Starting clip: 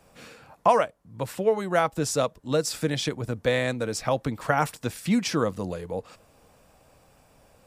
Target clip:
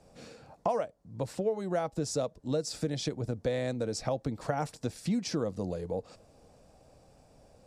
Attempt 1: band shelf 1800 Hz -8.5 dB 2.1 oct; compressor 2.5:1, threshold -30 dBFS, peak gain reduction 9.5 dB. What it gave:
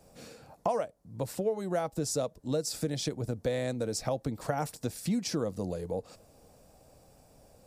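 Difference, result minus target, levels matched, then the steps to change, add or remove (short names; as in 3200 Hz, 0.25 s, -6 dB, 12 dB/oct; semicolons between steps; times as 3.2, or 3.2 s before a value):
8000 Hz band +3.5 dB
add first: Bessel low-pass 6300 Hz, order 2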